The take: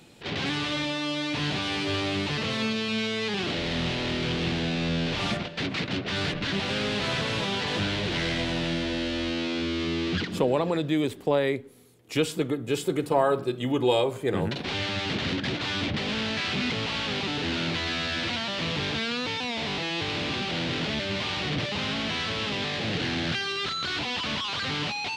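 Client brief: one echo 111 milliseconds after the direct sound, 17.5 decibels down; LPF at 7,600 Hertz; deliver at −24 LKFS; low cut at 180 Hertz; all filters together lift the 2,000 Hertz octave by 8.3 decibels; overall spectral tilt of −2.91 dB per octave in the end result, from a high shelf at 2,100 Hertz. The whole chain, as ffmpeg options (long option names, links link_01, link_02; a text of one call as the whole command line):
ffmpeg -i in.wav -af "highpass=180,lowpass=7600,equalizer=frequency=2000:width_type=o:gain=7,highshelf=frequency=2100:gain=5.5,aecho=1:1:111:0.133,volume=-1dB" out.wav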